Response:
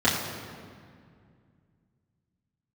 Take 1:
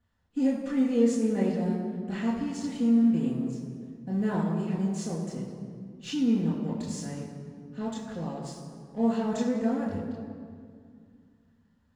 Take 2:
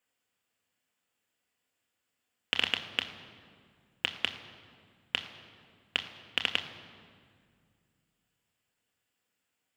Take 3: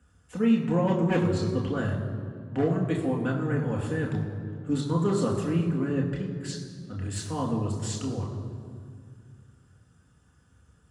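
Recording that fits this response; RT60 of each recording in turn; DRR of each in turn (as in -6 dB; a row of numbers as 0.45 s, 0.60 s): 1; 2.2 s, 2.2 s, 2.2 s; -9.5 dB, 5.0 dB, -1.5 dB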